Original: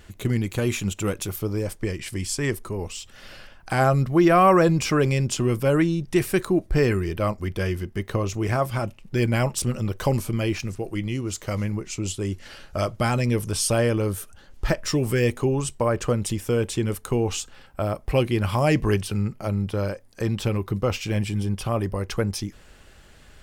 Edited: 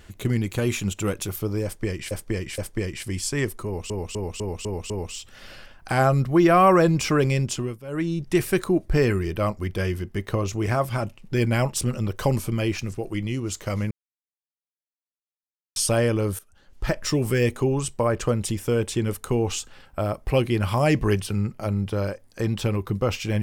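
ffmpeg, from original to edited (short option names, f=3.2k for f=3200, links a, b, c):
-filter_complex "[0:a]asplit=13[a][b][c][d][e][f][g][h][i][j][k][l][m];[a]atrim=end=2.112[n];[b]atrim=start=1.638:end=2.112[o];[c]atrim=start=1.638:end=2.962[p];[d]atrim=start=2.708:end=2.962[q];[e]atrim=start=2.708:end=2.962[r];[f]atrim=start=2.708:end=2.962[s];[g]atrim=start=2.708:end=2.962[t];[h]atrim=start=2.708:end=5.59,asetpts=PTS-STARTPTS,afade=t=out:st=2.412:d=0.47:c=qsin:silence=0.133352[u];[i]atrim=start=5.59:end=5.68,asetpts=PTS-STARTPTS,volume=-17.5dB[v];[j]atrim=start=5.68:end=11.72,asetpts=PTS-STARTPTS,afade=t=in:d=0.47:c=qsin:silence=0.133352,afade=t=out:st=6.036:d=0.004:c=hsin[w];[k]atrim=start=11.72:end=13.57,asetpts=PTS-STARTPTS,volume=0[x];[l]atrim=start=13.57:end=14.2,asetpts=PTS-STARTPTS,afade=t=in:d=0.004:c=hsin,afade=t=out:st=0.626:d=0.004:c=hsin:silence=0.149624[y];[m]atrim=start=14.2,asetpts=PTS-STARTPTS,afade=t=in:d=0.64:silence=0.149624[z];[n][o]acrossfade=d=0.004:c1=hsin:c2=hsin[aa];[aa][p]acrossfade=d=0.004:c1=hsin:c2=hsin[ab];[ab][q]acrossfade=d=0.004:c1=hsin:c2=hsin[ac];[ac][r]acrossfade=d=0.004:c1=hsin:c2=hsin[ad];[ad][s]acrossfade=d=0.004:c1=hsin:c2=hsin[ae];[ae][t]acrossfade=d=0.004:c1=hsin:c2=hsin[af];[u][v][w][x][y][z]concat=n=6:v=0:a=1[ag];[af][ag]acrossfade=d=0.004:c1=hsin:c2=hsin"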